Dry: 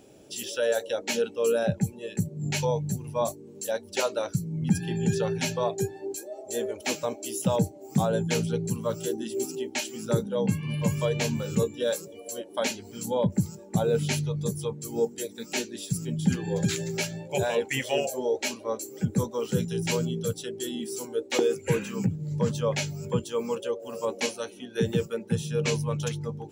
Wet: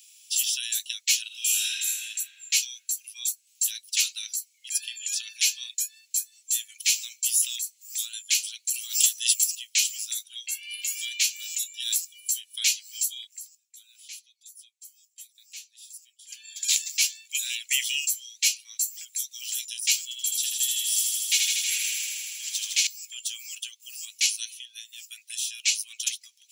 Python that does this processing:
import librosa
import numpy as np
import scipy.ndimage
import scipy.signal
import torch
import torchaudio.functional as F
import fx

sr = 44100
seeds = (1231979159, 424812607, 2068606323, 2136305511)

y = fx.reverb_throw(x, sr, start_s=1.27, length_s=0.74, rt60_s=2.2, drr_db=-8.0)
y = fx.env_flatten(y, sr, amount_pct=100, at=(8.74, 9.44))
y = fx.echo_thinned(y, sr, ms=79, feedback_pct=83, hz=470.0, wet_db=-3.5, at=(20.03, 22.87))
y = fx.edit(y, sr, fx.fade_down_up(start_s=13.14, length_s=3.48, db=-19.0, fade_s=0.36),
    fx.fade_down_up(start_s=24.59, length_s=0.6, db=-13.5, fade_s=0.26), tone=tone)
y = scipy.signal.sosfilt(scipy.signal.butter(6, 2400.0, 'highpass', fs=sr, output='sos'), y)
y = fx.high_shelf(y, sr, hz=3200.0, db=10.0)
y = y * 10.0 ** (3.5 / 20.0)